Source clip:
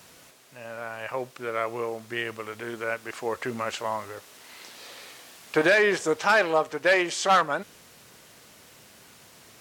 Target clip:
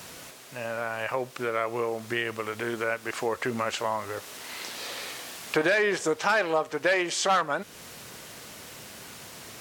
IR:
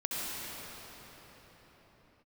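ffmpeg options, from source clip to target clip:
-af "acompressor=threshold=-38dB:ratio=2,volume=8dB"

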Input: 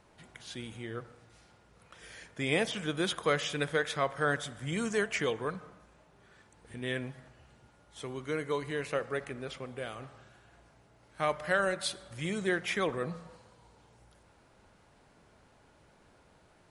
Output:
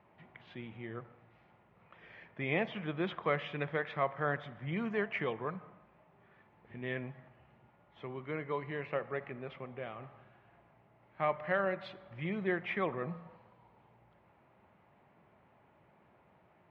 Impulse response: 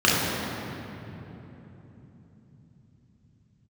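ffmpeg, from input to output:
-af "highpass=120,equalizer=f=280:t=q:w=4:g=-6,equalizer=f=470:t=q:w=4:g=-6,equalizer=f=1.5k:t=q:w=4:g=-8,lowpass=f=2.4k:w=0.5412,lowpass=f=2.4k:w=1.3066"

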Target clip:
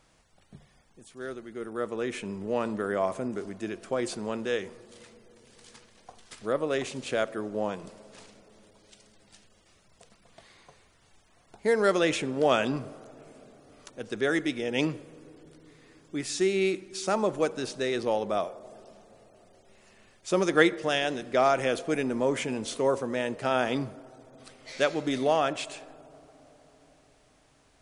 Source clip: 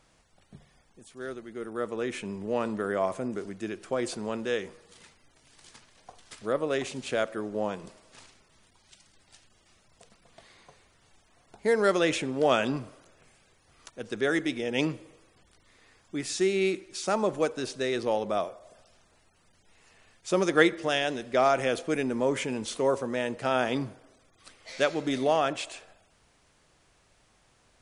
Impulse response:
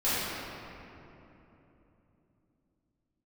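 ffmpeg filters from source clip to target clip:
-filter_complex "[0:a]asplit=2[a][b];[1:a]atrim=start_sample=2205,asetrate=26460,aresample=44100,lowpass=1.3k[c];[b][c]afir=irnorm=-1:irlink=0,volume=-36.5dB[d];[a][d]amix=inputs=2:normalize=0"

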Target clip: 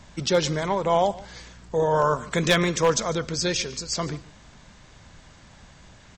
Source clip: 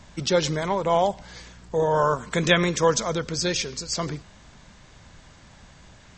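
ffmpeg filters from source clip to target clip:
-af "aeval=exprs='0.299*(abs(mod(val(0)/0.299+3,4)-2)-1)':c=same,aecho=1:1:147:0.0944"

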